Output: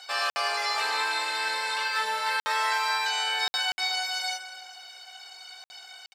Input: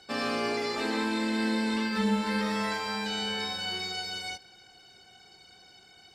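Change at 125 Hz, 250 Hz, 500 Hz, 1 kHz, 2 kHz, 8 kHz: under -30 dB, under -25 dB, -6.0 dB, +6.5 dB, +6.5 dB, +7.0 dB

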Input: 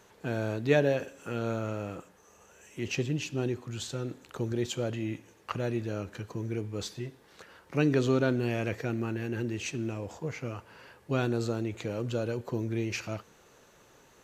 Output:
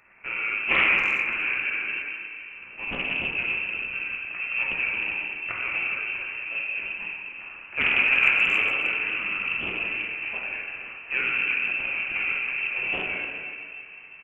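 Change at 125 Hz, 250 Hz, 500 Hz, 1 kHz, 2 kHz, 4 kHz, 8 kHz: under -15 dB, -12.0 dB, -10.5 dB, +5.0 dB, +18.0 dB, +9.0 dB, under -15 dB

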